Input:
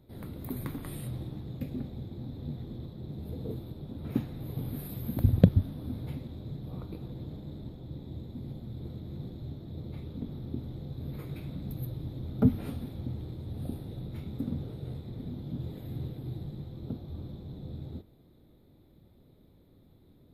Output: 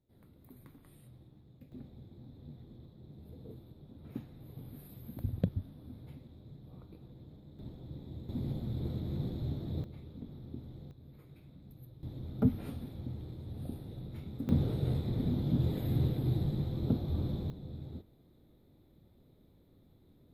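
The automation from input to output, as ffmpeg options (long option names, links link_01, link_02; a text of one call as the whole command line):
ffmpeg -i in.wav -af "asetnsamples=nb_out_samples=441:pad=0,asendcmd='1.72 volume volume -12dB;7.59 volume volume -4dB;8.29 volume volume 4dB;9.84 volume volume -8dB;10.91 volume volume -16dB;12.03 volume volume -4.5dB;14.49 volume volume 7dB;17.5 volume volume -3.5dB',volume=-19dB" out.wav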